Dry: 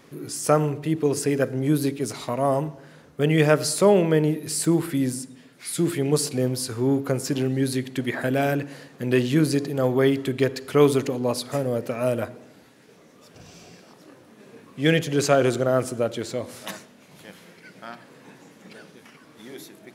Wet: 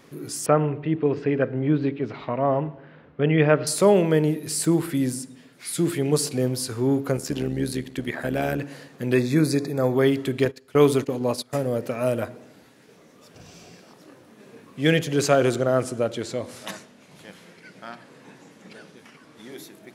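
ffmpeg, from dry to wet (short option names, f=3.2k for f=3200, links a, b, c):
-filter_complex "[0:a]asettb=1/sr,asplit=3[a][b][c];[a]atrim=end=0.464[d];[b]atrim=start=0.46:end=3.67,asetpts=PTS-STARTPTS,afade=t=in:d=0.004:c=qsin,afade=t=out:st=3.206:d=0.004:c=qsin,lowpass=f=3k:w=0.5412,lowpass=f=3k:w=1.3066[e];[c]atrim=start=3.666[f];[d][e]acrossfade=d=0.004:c1=hsin:c2=qsin[g];[g][f]acrossfade=d=0.004:c1=qsin:c2=hsin,asettb=1/sr,asplit=3[h][i][j];[h]atrim=end=7.174[k];[i]atrim=start=7.17:end=8.59,asetpts=PTS-STARTPTS,afade=t=in:d=0.004:c=qsin,afade=t=out:st=1.416:d=0.004:c=qsin,tremolo=f=75:d=0.621[l];[j]atrim=start=8.586[m];[k][l]acrossfade=d=0.004:c1=hsin:c2=qsin[n];[n][m]acrossfade=d=0.004:c1=qsin:c2=hsin,asettb=1/sr,asplit=3[o][p][q];[o]atrim=end=9.144[r];[p]atrim=start=9.14:end=9.94,asetpts=PTS-STARTPTS,afade=t=in:d=0.004:c=qsin,afade=t=out:st=0.796:d=0.004:c=qsin,asuperstop=centerf=3000:order=12:qfactor=4[s];[q]atrim=start=9.936[t];[r][s]acrossfade=d=0.004:c1=hsin:c2=qsin[u];[u][t]acrossfade=d=0.004:c1=qsin:c2=hsin,asettb=1/sr,asplit=3[v][w][x];[v]atrim=end=10.454[y];[w]atrim=start=10.45:end=11.53,asetpts=PTS-STARTPTS,afade=t=in:d=0.004:c=qsin,afade=t=out:st=1.076:d=0.004:c=qsin,agate=range=-17dB:threshold=-30dB:ratio=16:release=100:detection=peak[z];[x]atrim=start=11.526[aa];[y][z]acrossfade=d=0.004:c1=hsin:c2=qsin[ab];[ab][aa]acrossfade=d=0.004:c1=qsin:c2=hsin,asettb=1/sr,asplit=3[ac][ad][ae];[ac]atrim=end=15.564[af];[ad]atrim=start=15.56:end=19.52,asetpts=PTS-STARTPTS,afade=t=in:d=0.004:c=qsin,afade=t=out:st=3.956:d=0.004:c=qsin,lowpass=11k[ag];[ae]atrim=start=19.516[ah];[af][ag]acrossfade=d=0.004:c1=hsin:c2=qsin[ai];[ai][ah]acrossfade=d=0.004:c1=qsin:c2=hsin"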